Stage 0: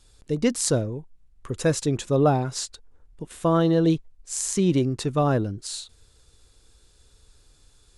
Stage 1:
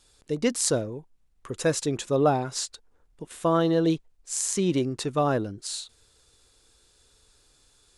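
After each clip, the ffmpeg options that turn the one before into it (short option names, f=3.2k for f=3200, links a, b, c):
-af "lowshelf=f=170:g=-11"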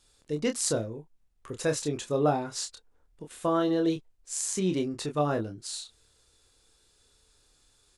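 -filter_complex "[0:a]asplit=2[a][b];[b]adelay=27,volume=-6dB[c];[a][c]amix=inputs=2:normalize=0,volume=-4.5dB"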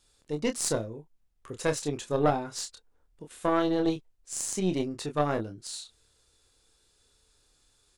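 -af "aeval=exprs='0.316*(cos(1*acos(clip(val(0)/0.316,-1,1)))-cos(1*PI/2))+0.0251*(cos(2*acos(clip(val(0)/0.316,-1,1)))-cos(2*PI/2))+0.0316*(cos(6*acos(clip(val(0)/0.316,-1,1)))-cos(6*PI/2))+0.00891*(cos(7*acos(clip(val(0)/0.316,-1,1)))-cos(7*PI/2))+0.0126*(cos(8*acos(clip(val(0)/0.316,-1,1)))-cos(8*PI/2))':c=same"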